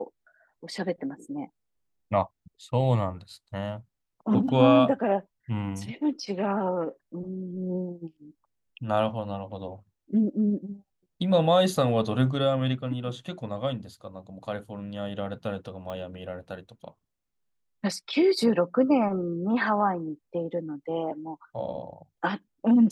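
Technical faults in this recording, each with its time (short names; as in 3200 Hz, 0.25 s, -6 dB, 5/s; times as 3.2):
15.9 pop -24 dBFS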